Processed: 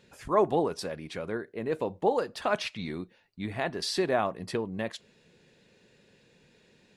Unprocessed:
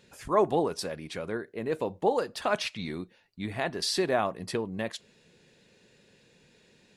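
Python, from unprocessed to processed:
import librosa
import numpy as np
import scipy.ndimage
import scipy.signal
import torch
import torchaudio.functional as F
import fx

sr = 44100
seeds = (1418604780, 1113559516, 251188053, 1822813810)

y = fx.high_shelf(x, sr, hz=4900.0, db=-5.5)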